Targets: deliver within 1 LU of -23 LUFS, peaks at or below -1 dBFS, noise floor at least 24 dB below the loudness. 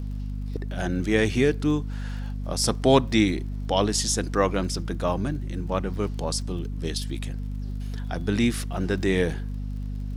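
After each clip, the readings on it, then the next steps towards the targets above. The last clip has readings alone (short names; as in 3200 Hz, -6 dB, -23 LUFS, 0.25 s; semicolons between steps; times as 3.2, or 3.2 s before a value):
ticks 39/s; hum 50 Hz; harmonics up to 250 Hz; hum level -28 dBFS; loudness -26.0 LUFS; peak -4.0 dBFS; loudness target -23.0 LUFS
-> de-click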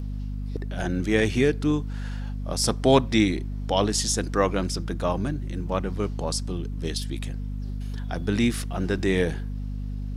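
ticks 0.098/s; hum 50 Hz; harmonics up to 250 Hz; hum level -28 dBFS
-> notches 50/100/150/200/250 Hz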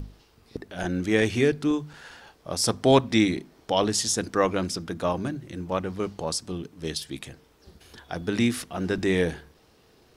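hum none; loudness -26.0 LUFS; peak -4.5 dBFS; loudness target -23.0 LUFS
-> gain +3 dB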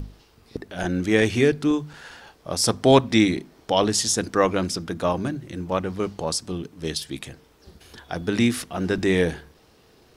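loudness -23.0 LUFS; peak -1.5 dBFS; noise floor -56 dBFS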